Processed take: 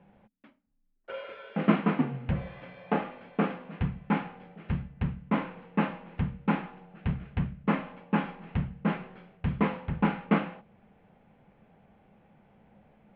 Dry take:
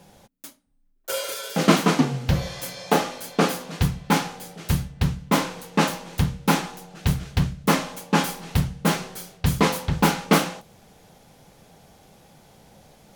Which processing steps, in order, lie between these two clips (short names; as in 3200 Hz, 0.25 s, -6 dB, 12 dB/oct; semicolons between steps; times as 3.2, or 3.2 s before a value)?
steep low-pass 2700 Hz 36 dB/oct; bell 210 Hz +8 dB 0.31 oct; gain -9 dB